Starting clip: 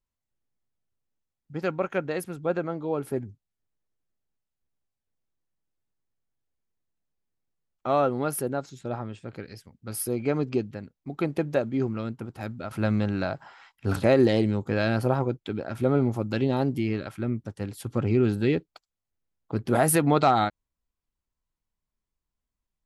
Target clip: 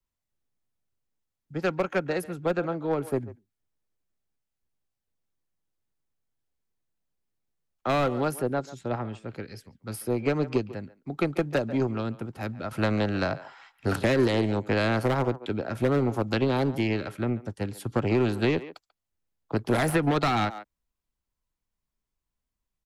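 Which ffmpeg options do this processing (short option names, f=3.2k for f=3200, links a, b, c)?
-filter_complex "[0:a]aeval=exprs='0.398*(cos(1*acos(clip(val(0)/0.398,-1,1)))-cos(1*PI/2))+0.0282*(cos(7*acos(clip(val(0)/0.398,-1,1)))-cos(7*PI/2))':c=same,asplit=2[a][b];[b]adelay=140,highpass=300,lowpass=3.4k,asoftclip=type=hard:threshold=-17dB,volume=-18dB[c];[a][c]amix=inputs=2:normalize=0,acrossover=split=490|1000[d][e][f];[e]aeval=exprs='0.0398*(abs(mod(val(0)/0.0398+3,4)-2)-1)':c=same[g];[d][g][f]amix=inputs=3:normalize=0,acrossover=split=140|290|3600[h][i][j][k];[h]acompressor=threshold=-38dB:ratio=4[l];[i]acompressor=threshold=-40dB:ratio=4[m];[j]acompressor=threshold=-30dB:ratio=4[n];[k]acompressor=threshold=-47dB:ratio=4[o];[l][m][n][o]amix=inputs=4:normalize=0,volume=6.5dB"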